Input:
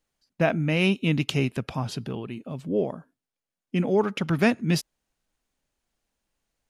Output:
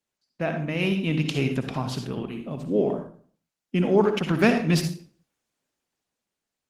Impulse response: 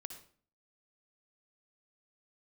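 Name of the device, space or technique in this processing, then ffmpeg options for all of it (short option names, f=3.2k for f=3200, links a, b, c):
far-field microphone of a smart speaker: -filter_complex "[1:a]atrim=start_sample=2205[a];[0:a][a]afir=irnorm=-1:irlink=0,highpass=120,dynaudnorm=f=220:g=11:m=7dB" -ar 48000 -c:a libopus -b:a 16k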